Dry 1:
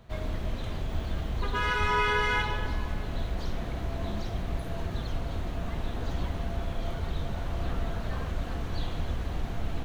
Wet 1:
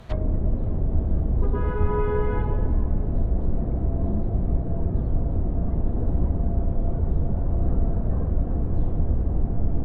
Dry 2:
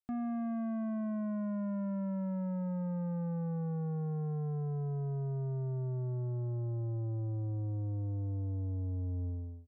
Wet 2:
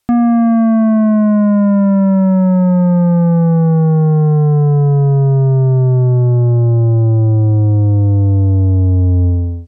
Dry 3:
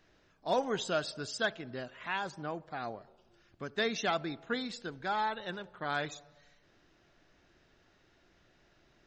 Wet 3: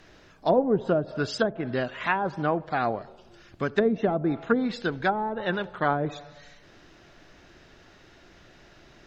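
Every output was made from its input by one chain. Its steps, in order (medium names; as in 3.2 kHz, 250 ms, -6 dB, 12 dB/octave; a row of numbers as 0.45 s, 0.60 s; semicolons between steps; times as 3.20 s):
low-pass that closes with the level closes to 460 Hz, closed at -29 dBFS; peak normalisation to -9 dBFS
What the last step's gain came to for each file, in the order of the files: +9.5 dB, +25.0 dB, +13.5 dB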